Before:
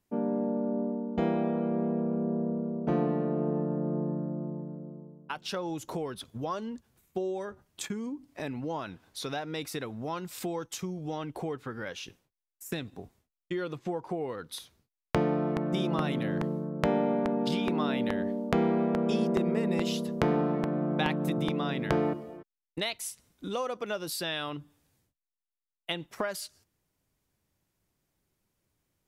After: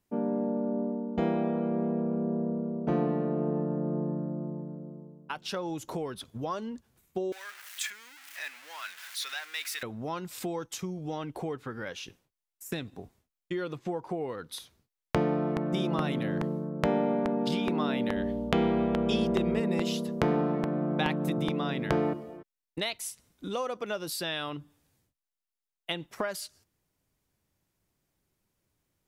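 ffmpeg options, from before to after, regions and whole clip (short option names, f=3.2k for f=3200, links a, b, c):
-filter_complex "[0:a]asettb=1/sr,asplit=3[a][b][c];[a]atrim=end=7.324[d];[b]atrim=start=7.32:end=9.83,asetpts=PTS-STARTPTS,afade=t=in:d=0.004:c=qsin,afade=t=out:st=2.506:d=0.004:c=qsin,aeval=exprs='val(0)+0.5*0.0112*sgn(val(0))':c=same,highpass=f=1.8k:t=q:w=1.7,highshelf=f=11k:g=3[e];[c]atrim=start=9.826[f];[d][e]acrossfade=d=0.004:c1=hsin:c2=qsin[g];[g][f]acrossfade=d=0.004:c1=qsin:c2=hsin,asettb=1/sr,asplit=3[h][i][j];[h]atrim=end=18.164[k];[i]atrim=start=18.16:end=19.6,asetpts=PTS-STARTPTS,afade=t=in:d=0.004:c=qsin,afade=t=out:st=1.436:d=0.004:c=qsin,equalizer=f=3.2k:w=2:g=8.5,aeval=exprs='val(0)+0.00794*(sin(2*PI*60*n/s)+sin(2*PI*2*60*n/s)/2+sin(2*PI*3*60*n/s)/3+sin(2*PI*4*60*n/s)/4+sin(2*PI*5*60*n/s)/5)':c=same[l];[j]atrim=start=19.596[m];[k][l]acrossfade=d=0.004:c1=hsin:c2=qsin[n];[n][m]acrossfade=d=0.004:c1=qsin:c2=hsin"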